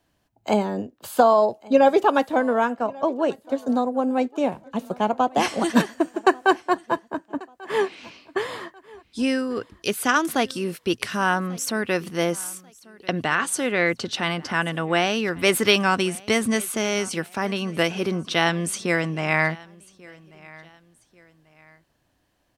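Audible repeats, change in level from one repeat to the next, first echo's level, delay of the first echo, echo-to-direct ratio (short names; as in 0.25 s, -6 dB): 2, -9.0 dB, -23.0 dB, 1.14 s, -22.5 dB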